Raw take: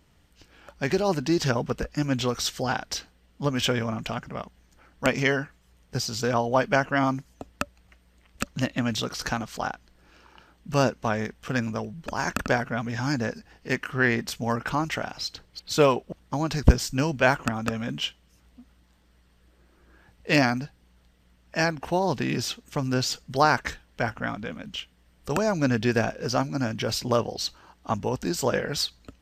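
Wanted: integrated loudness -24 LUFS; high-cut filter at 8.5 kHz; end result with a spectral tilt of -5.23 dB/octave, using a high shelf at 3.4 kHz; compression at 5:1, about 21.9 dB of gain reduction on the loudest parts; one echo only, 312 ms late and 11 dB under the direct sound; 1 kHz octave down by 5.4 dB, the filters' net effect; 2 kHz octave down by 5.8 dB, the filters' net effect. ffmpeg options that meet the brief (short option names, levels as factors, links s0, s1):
-af "lowpass=8500,equalizer=f=1000:t=o:g=-6,equalizer=f=2000:t=o:g=-3.5,highshelf=f=3400:g=-6.5,acompressor=threshold=0.0178:ratio=5,aecho=1:1:312:0.282,volume=5.96"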